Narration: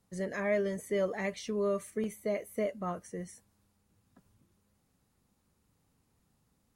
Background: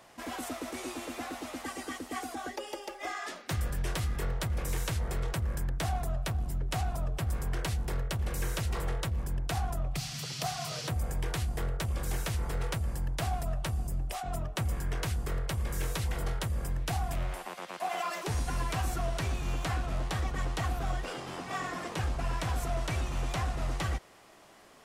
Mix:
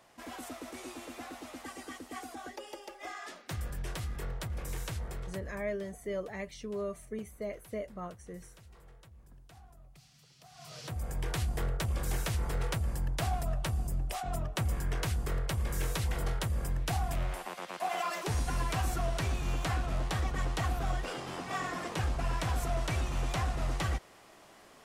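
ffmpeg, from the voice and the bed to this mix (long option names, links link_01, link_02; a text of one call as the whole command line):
ffmpeg -i stem1.wav -i stem2.wav -filter_complex "[0:a]adelay=5150,volume=-5.5dB[link_01];[1:a]volume=18dB,afade=type=out:start_time=4.99:duration=0.79:silence=0.125893,afade=type=in:start_time=10.49:duration=0.93:silence=0.0668344[link_02];[link_01][link_02]amix=inputs=2:normalize=0" out.wav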